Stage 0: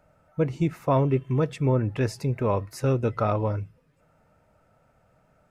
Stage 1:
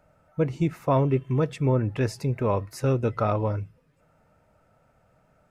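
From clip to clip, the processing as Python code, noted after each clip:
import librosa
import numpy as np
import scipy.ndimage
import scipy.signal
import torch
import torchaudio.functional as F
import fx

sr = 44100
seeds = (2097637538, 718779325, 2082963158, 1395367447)

y = x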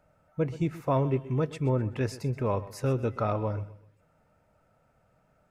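y = fx.echo_feedback(x, sr, ms=127, feedback_pct=34, wet_db=-16.5)
y = F.gain(torch.from_numpy(y), -4.0).numpy()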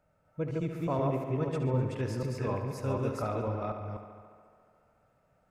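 y = fx.reverse_delay(x, sr, ms=248, wet_db=-1.5)
y = fx.echo_tape(y, sr, ms=71, feedback_pct=82, wet_db=-8, lp_hz=5700.0, drive_db=8.0, wow_cents=6)
y = F.gain(torch.from_numpy(y), -6.0).numpy()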